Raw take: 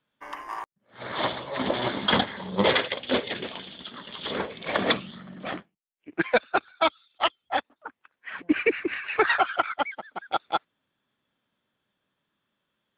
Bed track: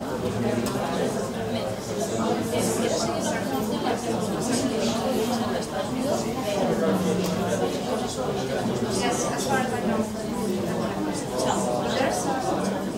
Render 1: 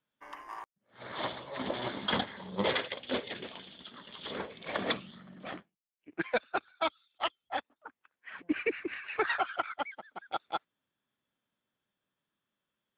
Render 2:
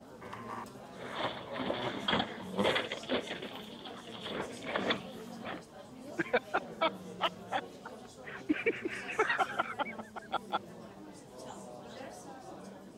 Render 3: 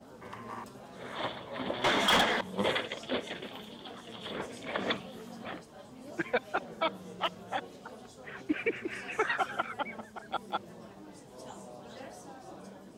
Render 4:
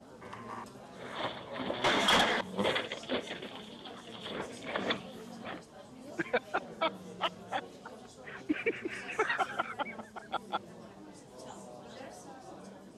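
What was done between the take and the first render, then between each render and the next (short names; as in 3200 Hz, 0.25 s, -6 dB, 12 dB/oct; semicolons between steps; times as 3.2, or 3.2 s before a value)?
gain -8.5 dB
add bed track -22.5 dB
1.84–2.41 overdrive pedal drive 25 dB, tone 5800 Hz, clips at -17 dBFS; 9.86–10.29 doubler 34 ms -13.5 dB
elliptic low-pass 12000 Hz, stop band 40 dB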